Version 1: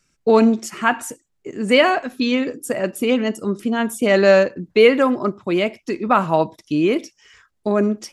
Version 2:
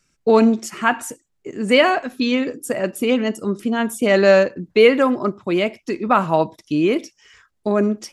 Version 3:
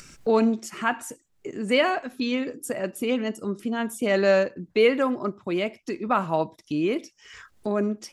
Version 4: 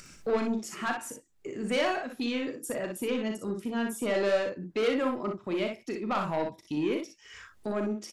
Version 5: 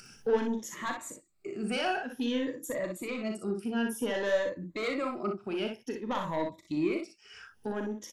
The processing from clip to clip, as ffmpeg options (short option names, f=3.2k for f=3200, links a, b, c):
-af anull
-af "acompressor=mode=upward:threshold=-21dB:ratio=2.5,volume=-7dB"
-filter_complex "[0:a]asoftclip=type=tanh:threshold=-19.5dB,asplit=2[a][b];[b]aecho=0:1:38|60:0.376|0.531[c];[a][c]amix=inputs=2:normalize=0,volume=-4dB"
-af "afftfilt=real='re*pow(10,12/40*sin(2*PI*(1.1*log(max(b,1)*sr/1024/100)/log(2)-(0.54)*(pts-256)/sr)))':imag='im*pow(10,12/40*sin(2*PI*(1.1*log(max(b,1)*sr/1024/100)/log(2)-(0.54)*(pts-256)/sr)))':win_size=1024:overlap=0.75,volume=-3.5dB"